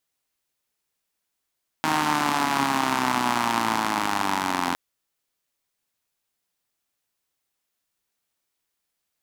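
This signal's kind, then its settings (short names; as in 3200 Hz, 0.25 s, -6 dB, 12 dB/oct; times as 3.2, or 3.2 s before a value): four-cylinder engine model, changing speed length 2.91 s, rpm 4700, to 2600, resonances 270/890 Hz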